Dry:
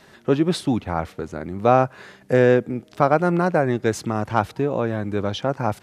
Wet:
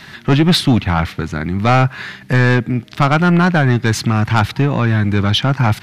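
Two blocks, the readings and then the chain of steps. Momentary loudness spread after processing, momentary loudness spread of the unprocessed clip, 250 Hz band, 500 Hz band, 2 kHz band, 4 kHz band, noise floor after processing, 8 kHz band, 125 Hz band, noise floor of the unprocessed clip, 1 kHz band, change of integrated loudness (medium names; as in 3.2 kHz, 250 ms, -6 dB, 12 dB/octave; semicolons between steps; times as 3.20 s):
7 LU, 10 LU, +7.5 dB, -2.0 dB, +10.5 dB, +15.0 dB, -39 dBFS, +9.0 dB, +12.5 dB, -52 dBFS, +4.5 dB, +6.5 dB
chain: ten-band graphic EQ 125 Hz +5 dB, 500 Hz -12 dB, 2 kHz +5 dB, 4 kHz +5 dB, 8 kHz -5 dB; in parallel at -1 dB: gain riding 2 s; on the sum: saturation -11 dBFS, distortion -10 dB; trim +5.5 dB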